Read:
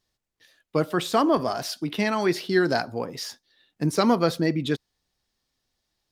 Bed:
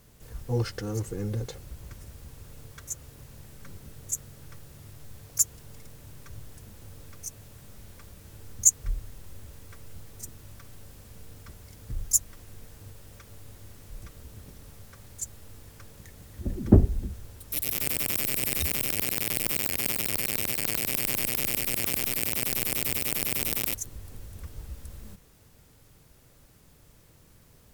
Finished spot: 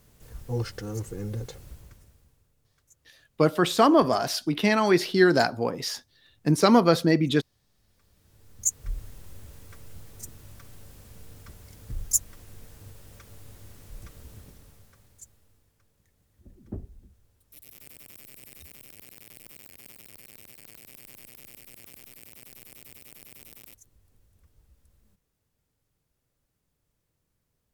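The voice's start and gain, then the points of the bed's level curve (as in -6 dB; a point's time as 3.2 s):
2.65 s, +2.5 dB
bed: 1.71 s -2 dB
2.55 s -24 dB
7.67 s -24 dB
9 s -0.5 dB
14.34 s -0.5 dB
15.76 s -20.5 dB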